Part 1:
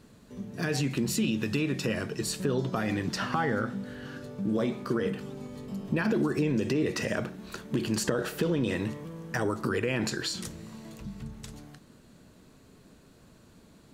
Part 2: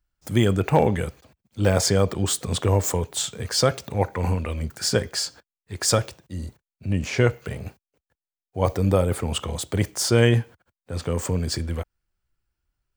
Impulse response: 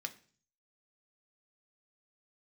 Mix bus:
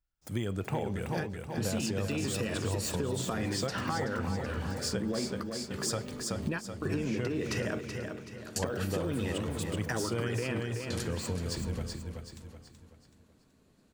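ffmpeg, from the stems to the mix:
-filter_complex "[0:a]adelay=550,volume=0dB,asplit=2[link_01][link_02];[link_02]volume=-11dB[link_03];[1:a]volume=-9dB,asplit=3[link_04][link_05][link_06];[link_05]volume=-6dB[link_07];[link_06]apad=whole_len=638985[link_08];[link_01][link_08]sidechaingate=range=-33dB:threshold=-54dB:ratio=16:detection=peak[link_09];[link_03][link_07]amix=inputs=2:normalize=0,aecho=0:1:378|756|1134|1512|1890|2268:1|0.4|0.16|0.064|0.0256|0.0102[link_10];[link_09][link_04][link_10]amix=inputs=3:normalize=0,acompressor=threshold=-29dB:ratio=5"

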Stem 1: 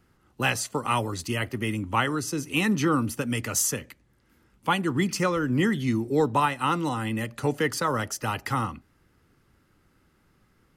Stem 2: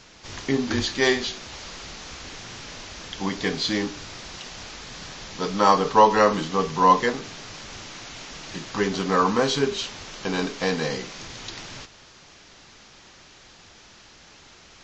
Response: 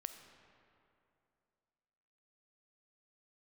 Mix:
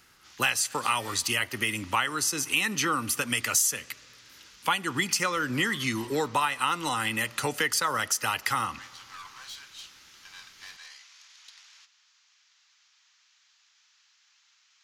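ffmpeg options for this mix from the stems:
-filter_complex "[0:a]volume=2dB,asplit=2[link_01][link_02];[link_02]volume=-13dB[link_03];[1:a]highpass=frequency=950:width=0.5412,highpass=frequency=950:width=1.3066,aeval=exprs='(tanh(17.8*val(0)+0.6)-tanh(0.6))/17.8':channel_layout=same,volume=-19dB[link_04];[2:a]atrim=start_sample=2205[link_05];[link_03][link_05]afir=irnorm=-1:irlink=0[link_06];[link_01][link_04][link_06]amix=inputs=3:normalize=0,tiltshelf=frequency=780:gain=-9.5,acompressor=threshold=-25dB:ratio=3"

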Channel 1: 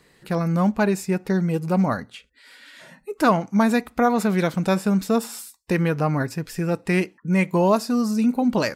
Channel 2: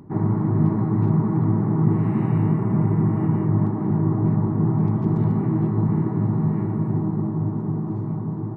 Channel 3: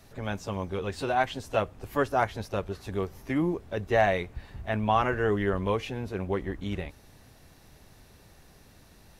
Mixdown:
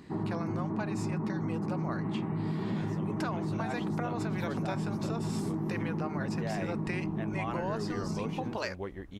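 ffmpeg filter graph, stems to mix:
ffmpeg -i stem1.wav -i stem2.wav -i stem3.wav -filter_complex "[0:a]lowpass=6400,acompressor=threshold=-23dB:ratio=6,highpass=560,volume=-2dB[link_01];[1:a]equalizer=frequency=120:width_type=o:width=0.35:gain=-14,volume=-5.5dB[link_02];[2:a]adelay=2500,volume=-9dB[link_03];[link_02][link_03]amix=inputs=2:normalize=0,alimiter=limit=-22dB:level=0:latency=1:release=19,volume=0dB[link_04];[link_01][link_04]amix=inputs=2:normalize=0,acompressor=threshold=-29dB:ratio=6" out.wav

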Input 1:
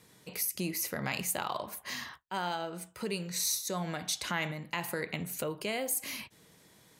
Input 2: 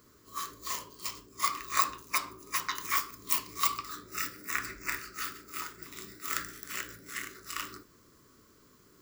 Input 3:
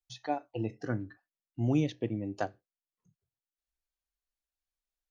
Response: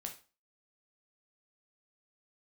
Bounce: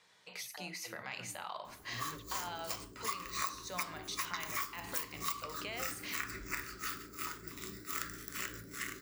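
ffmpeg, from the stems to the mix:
-filter_complex "[0:a]acontrast=63,volume=-9dB,asplit=2[link_01][link_02];[link_02]volume=-11.5dB[link_03];[1:a]lowshelf=frequency=290:gain=6.5,adelay=1650,volume=-1.5dB[link_04];[2:a]acrossover=split=240[link_05][link_06];[link_06]acompressor=threshold=-48dB:ratio=3[link_07];[link_05][link_07]amix=inputs=2:normalize=0,adelay=300,volume=0dB,asplit=2[link_08][link_09];[link_09]volume=-16.5dB[link_10];[link_01][link_08]amix=inputs=2:normalize=0,highpass=640,lowpass=5900,alimiter=level_in=8.5dB:limit=-24dB:level=0:latency=1:release=116,volume=-8.5dB,volume=0dB[link_11];[3:a]atrim=start_sample=2205[link_12];[link_03][link_10]amix=inputs=2:normalize=0[link_13];[link_13][link_12]afir=irnorm=-1:irlink=0[link_14];[link_04][link_11][link_14]amix=inputs=3:normalize=0,acompressor=threshold=-35dB:ratio=4"

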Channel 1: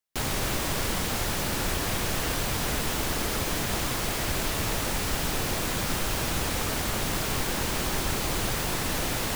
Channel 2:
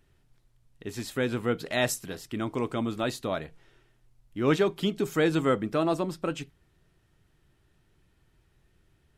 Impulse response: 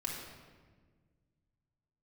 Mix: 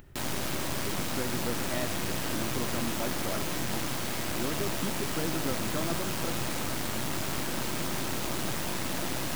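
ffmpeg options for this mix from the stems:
-filter_complex "[0:a]highpass=130,lowshelf=frequency=360:gain=6,aeval=exprs='clip(val(0),-1,0.0126)':channel_layout=same,volume=-4.5dB,asplit=2[link_01][link_02];[link_02]volume=-8dB[link_03];[1:a]equalizer=frequency=7300:width=0.42:gain=-14.5,acompressor=threshold=-27dB:ratio=6,volume=-4dB[link_04];[2:a]atrim=start_sample=2205[link_05];[link_03][link_05]afir=irnorm=-1:irlink=0[link_06];[link_01][link_04][link_06]amix=inputs=3:normalize=0,bandreject=frequency=440:width=12,acompressor=mode=upward:threshold=-38dB:ratio=2.5"

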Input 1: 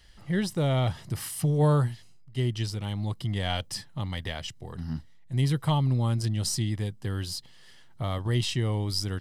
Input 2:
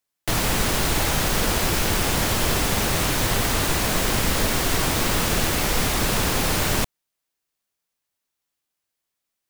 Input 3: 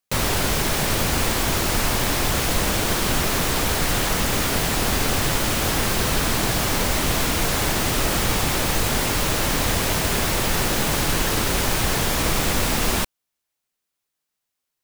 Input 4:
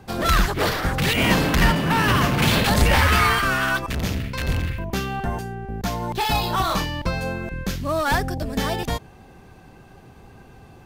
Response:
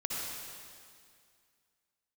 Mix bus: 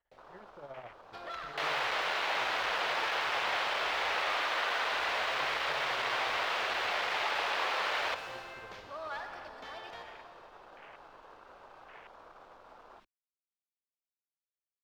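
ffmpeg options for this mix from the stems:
-filter_complex "[0:a]lowpass=1000,tremolo=f=14:d=0.75,volume=-9.5dB[link_01];[1:a]volume=18.5dB,asoftclip=hard,volume=-18.5dB,highpass=420,adelay=1300,volume=-5dB,asplit=2[link_02][link_03];[link_03]volume=-12dB[link_04];[2:a]alimiter=limit=-19dB:level=0:latency=1:release=56,afwtdn=0.0282,volume=-16dB[link_05];[3:a]acompressor=threshold=-25dB:ratio=6,adelay=1050,volume=-15.5dB,asplit=2[link_06][link_07];[link_07]volume=-4dB[link_08];[4:a]atrim=start_sample=2205[link_09];[link_04][link_08]amix=inputs=2:normalize=0[link_10];[link_10][link_09]afir=irnorm=-1:irlink=0[link_11];[link_01][link_02][link_05][link_06][link_11]amix=inputs=5:normalize=0,acrossover=split=480 4600:gain=0.0891 1 0.0708[link_12][link_13][link_14];[link_12][link_13][link_14]amix=inputs=3:normalize=0,acrossover=split=4300[link_15][link_16];[link_16]acompressor=threshold=-51dB:ratio=4:attack=1:release=60[link_17];[link_15][link_17]amix=inputs=2:normalize=0,equalizer=frequency=110:width=0.44:gain=-3.5"

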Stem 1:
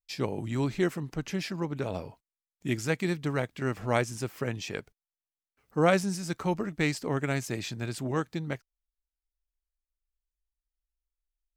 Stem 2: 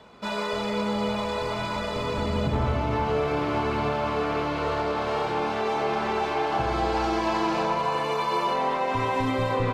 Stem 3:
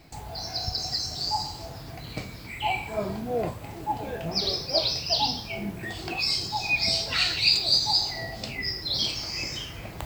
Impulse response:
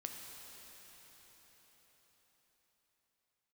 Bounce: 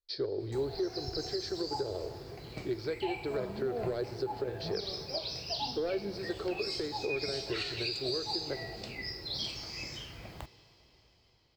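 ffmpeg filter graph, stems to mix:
-filter_complex "[0:a]asoftclip=type=hard:threshold=-21dB,acompressor=threshold=-31dB:ratio=6,firequalizer=gain_entry='entry(110,0);entry(180,-21);entry(380,12);entry(850,-8);entry(1500,-1);entry(2600,-17);entry(4300,10);entry(7000,-29)':delay=0.05:min_phase=1,volume=-4dB,asplit=2[link_01][link_02];[link_02]volume=-5dB[link_03];[2:a]highshelf=frequency=6200:gain=-5,adelay=400,volume=-10dB,asplit=2[link_04][link_05];[link_05]volume=-8.5dB[link_06];[3:a]atrim=start_sample=2205[link_07];[link_03][link_06]amix=inputs=2:normalize=0[link_08];[link_08][link_07]afir=irnorm=-1:irlink=0[link_09];[link_01][link_04][link_09]amix=inputs=3:normalize=0,alimiter=limit=-24dB:level=0:latency=1:release=226"

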